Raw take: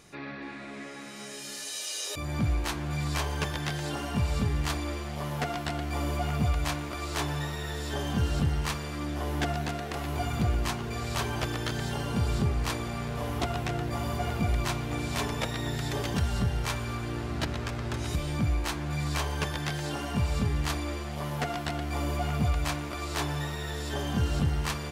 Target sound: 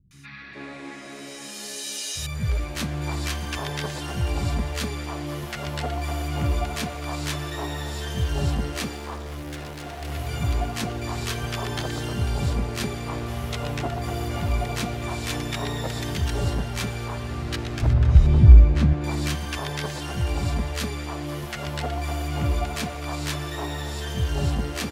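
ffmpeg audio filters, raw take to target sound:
-filter_complex "[0:a]asettb=1/sr,asplit=3[a][b][c];[a]atrim=end=8.844[d];[b]atrim=start=8.84:end=10.01,asetpts=PTS-STARTPTS,afade=t=in:d=0.004:c=qsin,afade=t=out:st=1.166:d=0.004:c=qsin,asoftclip=type=hard:threshold=-35.5dB[e];[c]atrim=start=10.006[f];[d][e]acrossfade=d=0.004:c1=hsin:c2=qsin[g];[g][f]acrossfade=d=0.004:c1=qsin:c2=hsin,asettb=1/sr,asplit=3[h][i][j];[h]atrim=end=17.824[k];[i]atrim=start=17.82:end=18.93,asetpts=PTS-STARTPTS,afade=t=in:d=0.004:c=qsin,afade=t=out:st=1.106:d=0.004:c=qsin,aemphasis=mode=reproduction:type=riaa[l];[j]atrim=start=18.926[m];[k][l]acrossfade=d=0.004:c1=hsin:c2=qsin[n];[n][m]acrossfade=d=0.004:c1=qsin:c2=hsin,acrossover=split=180|1200[o][p][q];[q]adelay=110[r];[p]adelay=420[s];[o][s][r]amix=inputs=3:normalize=0,volume=3.5dB"

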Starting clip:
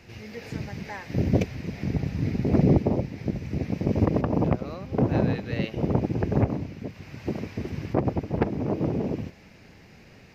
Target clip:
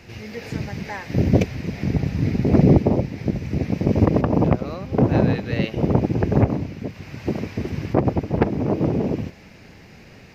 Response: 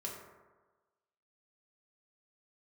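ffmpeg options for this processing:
-af "volume=5.5dB"

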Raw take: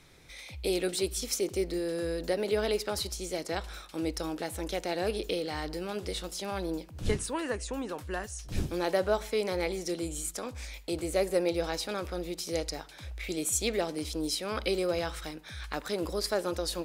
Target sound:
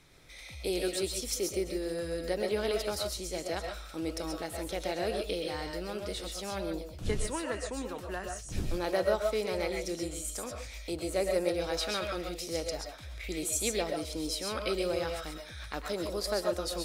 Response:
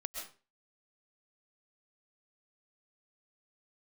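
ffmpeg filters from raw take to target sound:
-filter_complex "[0:a]asettb=1/sr,asplit=3[a][b][c];[a]atrim=end=11.774[d];[b]atrim=start=11.77:end=12.29,asetpts=PTS-STARTPTS,afade=t=in:d=0.004:c=qsin,afade=t=out:st=0.516:d=0.004:c=qsin,equalizer=f=2.6k:w=0.67:g=7.5[e];[c]atrim=start=12.286[f];[d][e]acrossfade=d=0.004:c1=hsin:c2=qsin[g];[g][f]acrossfade=d=0.004:c1=qsin:c2=hsin[h];[1:a]atrim=start_sample=2205,atrim=end_sample=6615[i];[h][i]afir=irnorm=-1:irlink=0"

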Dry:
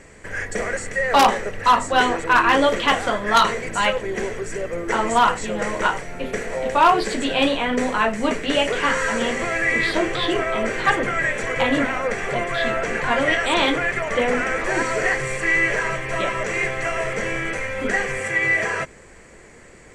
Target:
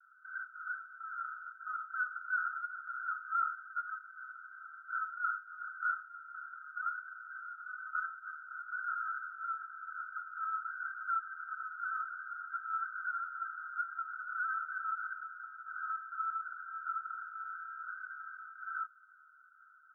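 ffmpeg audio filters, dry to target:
-af "asoftclip=type=tanh:threshold=-25dB,asuperpass=centerf=1400:order=20:qfactor=4.8"

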